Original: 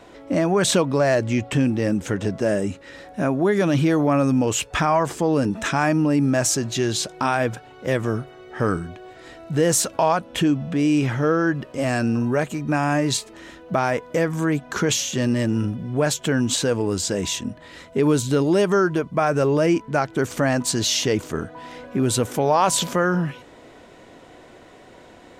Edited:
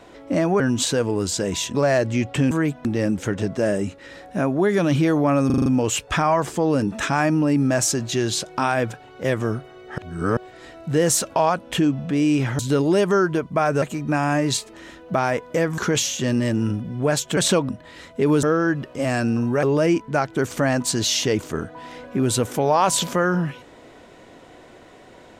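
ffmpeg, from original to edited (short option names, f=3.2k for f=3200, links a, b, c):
-filter_complex "[0:a]asplit=19[a][b][c][d][e][f][g][h][i][j][k][l][m][n][o][p][q][r][s];[a]atrim=end=0.602[t];[b]atrim=start=16.308:end=17.462[u];[c]atrim=start=0.918:end=1.682[v];[d]atrim=start=14.378:end=14.722[w];[e]atrim=start=1.678:end=4.332[x];[f]atrim=start=4.288:end=4.332[y];[g]atrim=start=4.288:end=4.332[z];[h]atrim=start=4.288:end=4.332[aa];[i]atrim=start=4.288:end=4.332[ab];[j]atrim=start=4.288:end=8.612[ac];[k]atrim=start=8.608:end=9.002,asetpts=PTS-STARTPTS,areverse[ad];[l]atrim=start=8.998:end=11.222[ae];[m]atrim=start=18.198:end=19.432[af];[n]atrim=start=12.418:end=14.382[ag];[o]atrim=start=14.718:end=16.312[ah];[p]atrim=start=0.598:end=0.922[ai];[q]atrim=start=17.458:end=18.202[aj];[r]atrim=start=11.218:end=12.422[ak];[s]atrim=start=19.428[al];[t][u]acrossfade=d=0.004:c1=hsin:c2=hsin[am];[am][v]acrossfade=d=0.004:c1=hsin:c2=hsin[an];[an][w]acrossfade=d=0.004:c1=hsin:c2=hsin[ao];[ao][x]acrossfade=d=0.004:c1=hsin:c2=hsin[ap];[ap][y]acrossfade=d=0.004:c1=hsin:c2=hsin[aq];[aq][z]acrossfade=d=0.004:c1=hsin:c2=hsin[ar];[ar][aa]acrossfade=d=0.004:c1=hsin:c2=hsin[as];[as][ab]acrossfade=d=0.004:c1=hsin:c2=hsin[at];[at][ac]acrossfade=d=0.004:c1=hsin:c2=hsin[au];[au][ad]acrossfade=d=0.004:c1=hsin:c2=hsin[av];[av][ae]acrossfade=d=0.004:c1=hsin:c2=hsin[aw];[aw][af]acrossfade=d=0.004:c1=hsin:c2=hsin[ax];[ax][ag]acrossfade=d=0.004:c1=hsin:c2=hsin[ay];[ay][ah]acrossfade=d=0.004:c1=hsin:c2=hsin[az];[az][ai]acrossfade=d=0.004:c1=hsin:c2=hsin[ba];[ba][aj]acrossfade=d=0.004:c1=hsin:c2=hsin[bb];[bb][ak]acrossfade=d=0.004:c1=hsin:c2=hsin[bc];[bc][al]acrossfade=d=0.004:c1=hsin:c2=hsin"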